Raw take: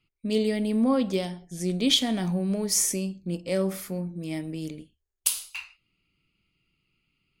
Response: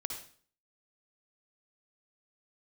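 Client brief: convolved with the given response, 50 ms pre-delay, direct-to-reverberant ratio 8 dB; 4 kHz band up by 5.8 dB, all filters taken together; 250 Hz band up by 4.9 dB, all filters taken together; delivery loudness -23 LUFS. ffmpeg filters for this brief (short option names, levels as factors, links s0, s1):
-filter_complex "[0:a]equalizer=f=250:t=o:g=6,equalizer=f=4000:t=o:g=7.5,asplit=2[s0][s1];[1:a]atrim=start_sample=2205,adelay=50[s2];[s1][s2]afir=irnorm=-1:irlink=0,volume=0.376[s3];[s0][s3]amix=inputs=2:normalize=0,volume=0.944"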